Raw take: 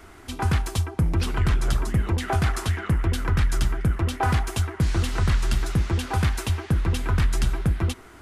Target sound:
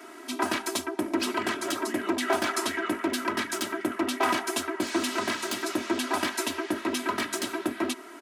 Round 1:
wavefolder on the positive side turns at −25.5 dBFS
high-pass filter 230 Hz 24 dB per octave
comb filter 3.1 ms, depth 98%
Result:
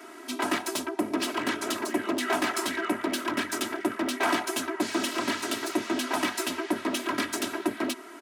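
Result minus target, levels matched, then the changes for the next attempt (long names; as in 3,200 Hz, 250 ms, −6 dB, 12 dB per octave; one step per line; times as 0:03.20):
wavefolder on the positive side: distortion +12 dB
change: wavefolder on the positive side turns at −18.5 dBFS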